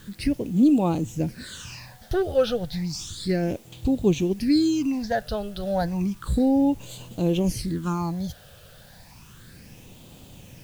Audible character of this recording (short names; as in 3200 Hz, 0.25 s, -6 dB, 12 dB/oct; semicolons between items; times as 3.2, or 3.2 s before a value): phasing stages 8, 0.32 Hz, lowest notch 280–1700 Hz; a quantiser's noise floor 10-bit, dither triangular